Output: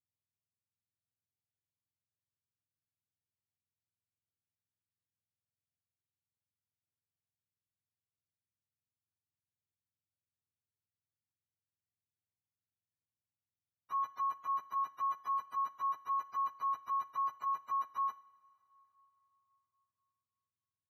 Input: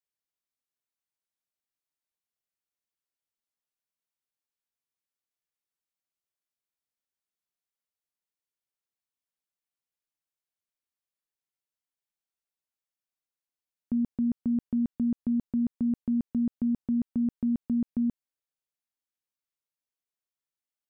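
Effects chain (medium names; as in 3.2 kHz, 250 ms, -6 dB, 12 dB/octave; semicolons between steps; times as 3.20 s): spectrum inverted on a logarithmic axis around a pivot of 510 Hz; two-slope reverb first 0.56 s, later 3.7 s, from -15 dB, DRR 15 dB; trim -8 dB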